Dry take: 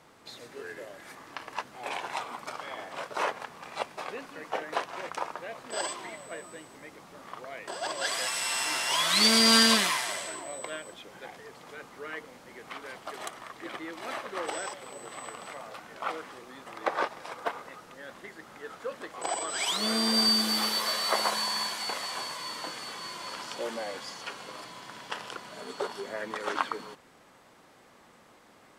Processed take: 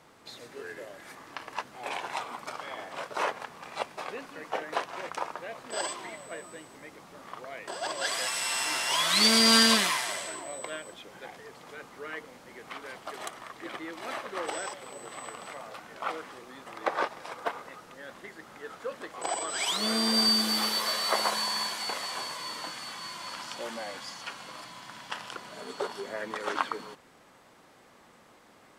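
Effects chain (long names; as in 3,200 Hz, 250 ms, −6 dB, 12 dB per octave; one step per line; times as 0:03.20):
0:22.63–0:25.35: parametric band 430 Hz −8 dB 0.69 octaves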